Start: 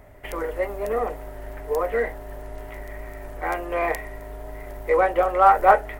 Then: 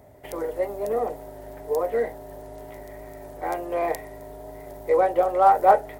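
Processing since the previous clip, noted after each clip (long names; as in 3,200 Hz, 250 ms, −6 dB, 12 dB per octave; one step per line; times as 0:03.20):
high-pass filter 90 Hz 12 dB per octave
flat-topped bell 1,800 Hz −8.5 dB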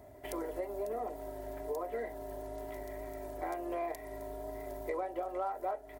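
comb filter 3 ms, depth 52%
downward compressor 6 to 1, threshold −30 dBFS, peak gain reduction 18.5 dB
level −4.5 dB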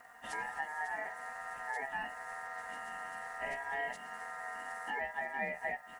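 partials spread apart or drawn together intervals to 88%
background noise blue −76 dBFS
ring modulation 1,300 Hz
level +3 dB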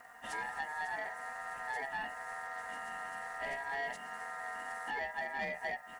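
soft clipping −31 dBFS, distortion −17 dB
level +1.5 dB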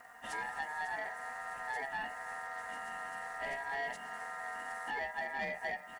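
single-tap delay 316 ms −18 dB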